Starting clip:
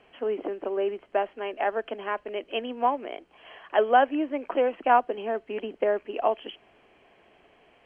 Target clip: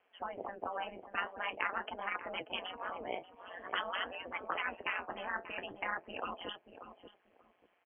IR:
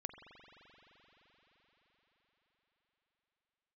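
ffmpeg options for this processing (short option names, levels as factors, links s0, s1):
-filter_complex "[0:a]afftdn=nr=22:nf=-38,afftfilt=real='re*lt(hypot(re,im),0.0891)':imag='im*lt(hypot(re,im),0.0891)':win_size=1024:overlap=0.75,flanger=delay=3.9:depth=9.7:regen=54:speed=0.47:shape=sinusoidal,asplit=2[s0][s1];[s1]acompressor=threshold=0.00126:ratio=16,volume=0.841[s2];[s0][s2]amix=inputs=2:normalize=0,bandpass=f=1300:t=q:w=0.72:csg=0,bandreject=f=980:w=29,tremolo=f=180:d=0.788,asplit=2[s3][s4];[s4]adelay=586,lowpass=f=950:p=1,volume=0.376,asplit=2[s5][s6];[s6]adelay=586,lowpass=f=950:p=1,volume=0.21,asplit=2[s7][s8];[s8]adelay=586,lowpass=f=950:p=1,volume=0.21[s9];[s5][s7][s9]amix=inputs=3:normalize=0[s10];[s3][s10]amix=inputs=2:normalize=0,volume=4.22"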